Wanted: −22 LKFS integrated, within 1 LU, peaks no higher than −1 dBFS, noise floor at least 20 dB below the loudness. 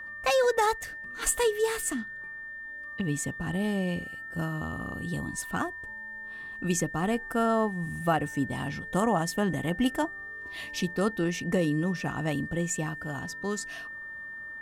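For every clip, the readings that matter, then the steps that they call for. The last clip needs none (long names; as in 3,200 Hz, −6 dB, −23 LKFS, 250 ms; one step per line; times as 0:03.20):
interfering tone 1,800 Hz; level of the tone −38 dBFS; integrated loudness −30.0 LKFS; sample peak −13.0 dBFS; target loudness −22.0 LKFS
→ notch filter 1,800 Hz, Q 30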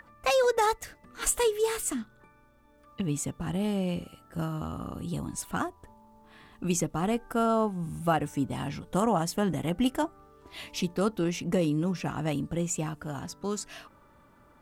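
interfering tone none found; integrated loudness −30.0 LKFS; sample peak −13.0 dBFS; target loudness −22.0 LKFS
→ level +8 dB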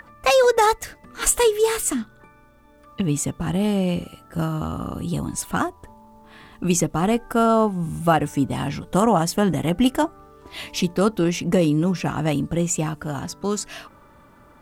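integrated loudness −22.0 LKFS; sample peak −5.0 dBFS; background noise floor −51 dBFS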